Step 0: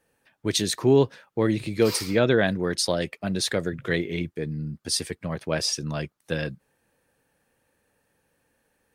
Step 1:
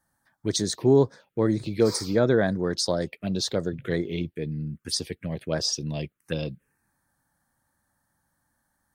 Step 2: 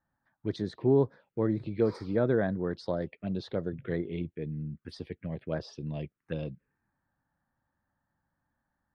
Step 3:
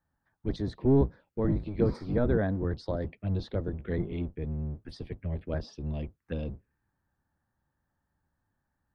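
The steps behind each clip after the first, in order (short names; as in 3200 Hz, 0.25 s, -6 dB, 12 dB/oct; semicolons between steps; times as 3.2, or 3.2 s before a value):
envelope phaser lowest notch 450 Hz, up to 2800 Hz, full sweep at -21 dBFS
air absorption 410 m; gain -4.5 dB
octaver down 1 oct, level +3 dB; gain -1.5 dB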